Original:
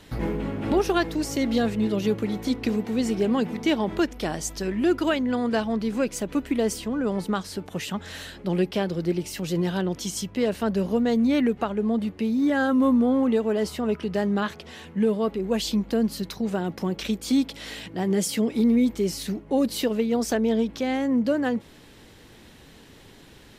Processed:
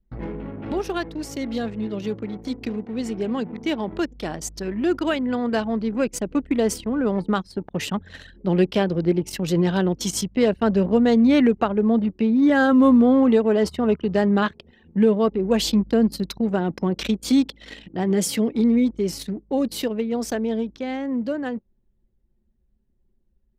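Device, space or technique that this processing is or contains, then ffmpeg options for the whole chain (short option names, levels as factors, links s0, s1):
voice memo with heavy noise removal: -af "anlmdn=6.31,dynaudnorm=f=540:g=21:m=3.55,volume=0.631"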